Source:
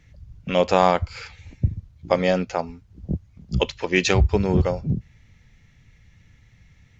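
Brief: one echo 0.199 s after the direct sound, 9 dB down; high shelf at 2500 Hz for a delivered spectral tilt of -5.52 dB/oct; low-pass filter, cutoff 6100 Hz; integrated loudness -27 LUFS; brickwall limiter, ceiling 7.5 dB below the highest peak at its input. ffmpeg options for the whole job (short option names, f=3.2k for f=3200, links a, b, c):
-af "lowpass=6.1k,highshelf=f=2.5k:g=6,alimiter=limit=-8dB:level=0:latency=1,aecho=1:1:199:0.355,volume=-3dB"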